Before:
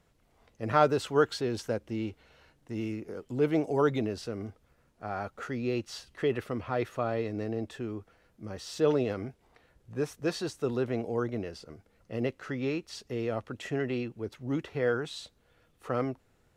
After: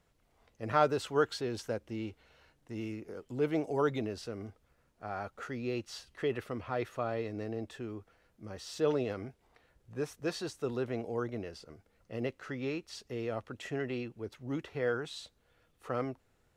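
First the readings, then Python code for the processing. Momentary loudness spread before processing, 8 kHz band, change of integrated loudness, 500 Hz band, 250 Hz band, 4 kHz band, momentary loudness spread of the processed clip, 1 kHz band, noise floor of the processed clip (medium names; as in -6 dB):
15 LU, -3.0 dB, -4.0 dB, -4.0 dB, -5.0 dB, -3.0 dB, 15 LU, -3.5 dB, -72 dBFS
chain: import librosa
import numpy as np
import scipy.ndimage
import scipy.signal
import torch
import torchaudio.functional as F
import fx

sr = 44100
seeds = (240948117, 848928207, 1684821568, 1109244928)

y = fx.peak_eq(x, sr, hz=190.0, db=-2.5, octaves=2.3)
y = y * 10.0 ** (-3.0 / 20.0)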